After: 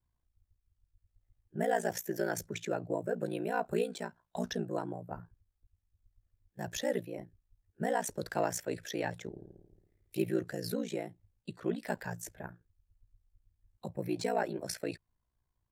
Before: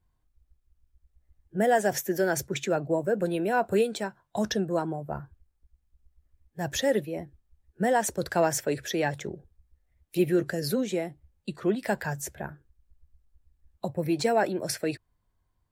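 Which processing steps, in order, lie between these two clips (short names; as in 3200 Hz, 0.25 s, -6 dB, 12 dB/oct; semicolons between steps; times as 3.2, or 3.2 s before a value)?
9.31–10.22 flutter echo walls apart 9.5 m, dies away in 1.1 s; ring modulator 29 Hz; gain -5 dB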